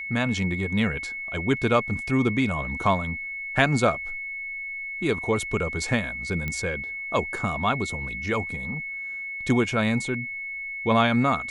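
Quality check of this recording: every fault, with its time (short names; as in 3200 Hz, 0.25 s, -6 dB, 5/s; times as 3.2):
tone 2200 Hz -31 dBFS
6.48 pop -16 dBFS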